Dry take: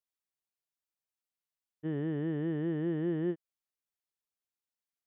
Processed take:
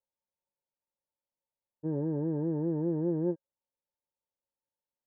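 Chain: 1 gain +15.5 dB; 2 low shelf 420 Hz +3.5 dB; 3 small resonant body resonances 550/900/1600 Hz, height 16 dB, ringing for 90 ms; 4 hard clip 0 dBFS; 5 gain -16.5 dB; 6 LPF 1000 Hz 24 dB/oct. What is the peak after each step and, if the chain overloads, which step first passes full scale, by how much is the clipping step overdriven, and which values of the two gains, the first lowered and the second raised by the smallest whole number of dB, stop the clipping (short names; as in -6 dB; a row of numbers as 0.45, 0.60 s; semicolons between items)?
-7.5, -5.5, -3.0, -3.0, -19.5, -20.0 dBFS; no overload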